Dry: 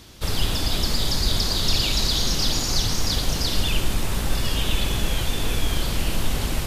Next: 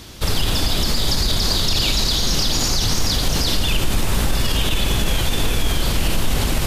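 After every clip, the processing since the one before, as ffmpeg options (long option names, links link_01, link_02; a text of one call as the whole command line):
ffmpeg -i in.wav -af "alimiter=level_in=15.5dB:limit=-1dB:release=50:level=0:latency=1,volume=-8dB" out.wav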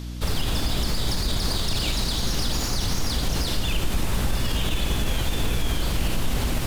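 ffmpeg -i in.wav -filter_complex "[0:a]acrossover=split=2600[link_01][link_02];[link_02]aeval=exprs='clip(val(0),-1,0.0251)':channel_layout=same[link_03];[link_01][link_03]amix=inputs=2:normalize=0,aeval=exprs='val(0)+0.0501*(sin(2*PI*60*n/s)+sin(2*PI*2*60*n/s)/2+sin(2*PI*3*60*n/s)/3+sin(2*PI*4*60*n/s)/4+sin(2*PI*5*60*n/s)/5)':channel_layout=same,volume=-5.5dB" out.wav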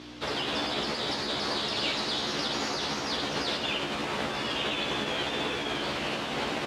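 ffmpeg -i in.wav -filter_complex "[0:a]highpass=310,lowpass=3700,asplit=2[link_01][link_02];[link_02]adelay=14,volume=-2dB[link_03];[link_01][link_03]amix=inputs=2:normalize=0" out.wav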